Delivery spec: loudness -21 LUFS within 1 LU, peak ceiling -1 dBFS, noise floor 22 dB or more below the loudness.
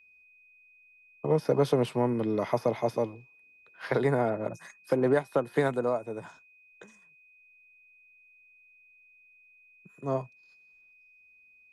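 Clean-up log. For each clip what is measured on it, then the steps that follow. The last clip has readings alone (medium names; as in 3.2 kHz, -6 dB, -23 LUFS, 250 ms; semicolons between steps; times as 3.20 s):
steady tone 2.5 kHz; tone level -57 dBFS; loudness -29.0 LUFS; peak level -12.5 dBFS; loudness target -21.0 LUFS
-> band-stop 2.5 kHz, Q 30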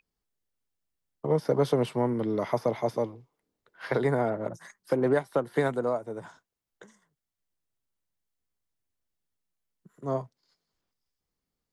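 steady tone not found; loudness -28.5 LUFS; peak level -12.5 dBFS; loudness target -21.0 LUFS
-> trim +7.5 dB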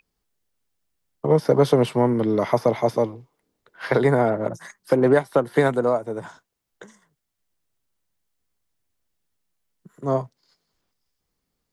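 loudness -21.5 LUFS; peak level -5.0 dBFS; noise floor -79 dBFS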